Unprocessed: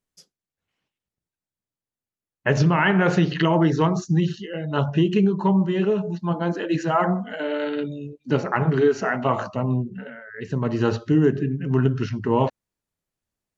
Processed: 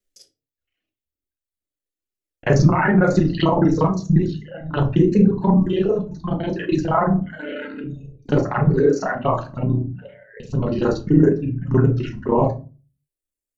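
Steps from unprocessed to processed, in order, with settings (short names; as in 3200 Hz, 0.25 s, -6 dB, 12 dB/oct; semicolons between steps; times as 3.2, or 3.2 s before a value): local time reversal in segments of 32 ms; reverb removal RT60 1.9 s; envelope phaser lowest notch 160 Hz, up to 3100 Hz, full sweep at -19.5 dBFS; shoebox room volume 140 m³, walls furnished, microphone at 0.96 m; gain +3 dB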